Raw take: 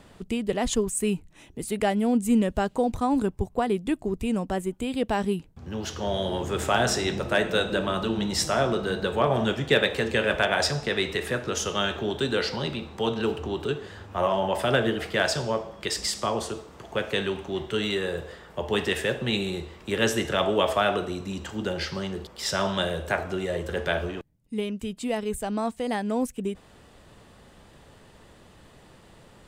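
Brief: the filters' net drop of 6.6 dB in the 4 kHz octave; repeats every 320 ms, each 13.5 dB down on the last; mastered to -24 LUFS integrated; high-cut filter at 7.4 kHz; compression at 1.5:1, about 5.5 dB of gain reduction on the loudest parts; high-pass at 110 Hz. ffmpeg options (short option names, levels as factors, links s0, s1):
-af "highpass=110,lowpass=7400,equalizer=f=4000:t=o:g=-8.5,acompressor=threshold=0.0224:ratio=1.5,aecho=1:1:320|640:0.211|0.0444,volume=2.37"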